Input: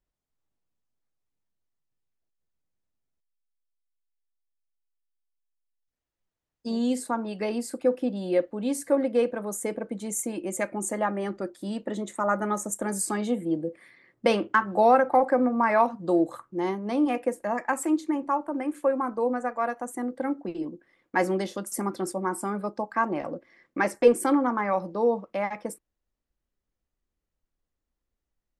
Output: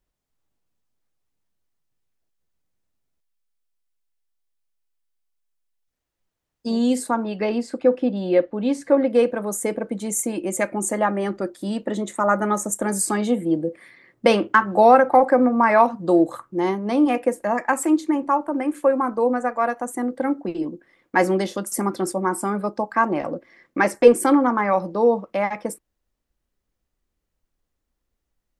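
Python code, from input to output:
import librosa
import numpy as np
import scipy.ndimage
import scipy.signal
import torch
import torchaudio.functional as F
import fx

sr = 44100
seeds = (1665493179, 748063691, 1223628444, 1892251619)

y = fx.lowpass(x, sr, hz=4400.0, slope=12, at=(7.24, 9.1))
y = y * librosa.db_to_amplitude(6.0)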